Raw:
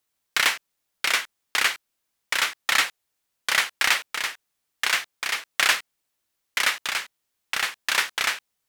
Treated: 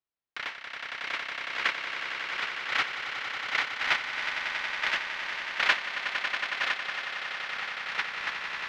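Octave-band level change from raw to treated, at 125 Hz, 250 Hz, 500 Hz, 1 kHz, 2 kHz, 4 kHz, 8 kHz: can't be measured, −3.0 dB, −3.0 dB, −3.5 dB, −4.0 dB, −7.5 dB, −19.5 dB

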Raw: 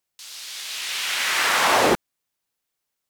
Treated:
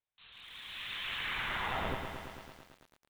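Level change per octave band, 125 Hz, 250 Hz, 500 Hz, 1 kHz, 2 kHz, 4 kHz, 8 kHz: −5.0, −16.0, −19.0, −16.5, −14.5, −15.0, −32.0 decibels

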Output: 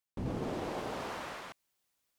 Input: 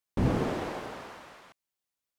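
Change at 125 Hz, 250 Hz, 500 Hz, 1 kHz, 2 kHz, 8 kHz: −9.5, −7.5, −4.5, −3.0, −3.0, −0.5 decibels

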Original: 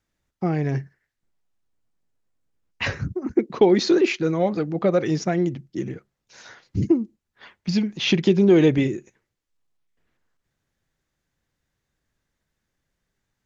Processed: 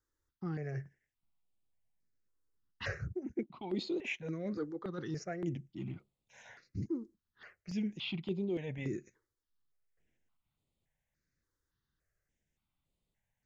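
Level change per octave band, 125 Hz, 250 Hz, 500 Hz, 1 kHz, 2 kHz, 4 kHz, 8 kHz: −15.0 dB, −17.5 dB, −20.0 dB, −19.0 dB, −13.5 dB, −16.5 dB, can't be measured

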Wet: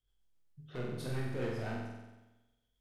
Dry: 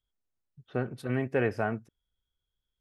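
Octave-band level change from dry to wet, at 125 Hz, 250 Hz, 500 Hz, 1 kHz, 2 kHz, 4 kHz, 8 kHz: −4.0 dB, −8.0 dB, −9.0 dB, −9.5 dB, −10.0 dB, +1.0 dB, can't be measured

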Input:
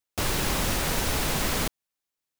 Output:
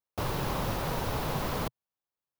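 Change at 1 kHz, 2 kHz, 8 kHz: −2.0, −8.5, −14.5 decibels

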